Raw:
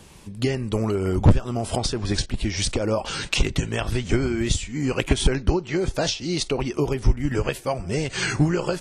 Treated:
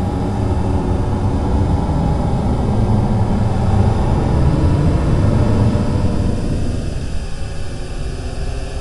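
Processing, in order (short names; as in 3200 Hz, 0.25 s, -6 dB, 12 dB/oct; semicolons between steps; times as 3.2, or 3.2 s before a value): spectral swells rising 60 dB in 1.95 s; Paulstretch 38×, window 0.05 s, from 1.14; gain -5 dB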